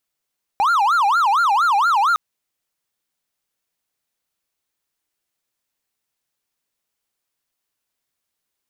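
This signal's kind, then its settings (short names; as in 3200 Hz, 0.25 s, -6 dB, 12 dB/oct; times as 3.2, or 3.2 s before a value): siren wail 789–1410 Hz 4.3/s triangle -11.5 dBFS 1.56 s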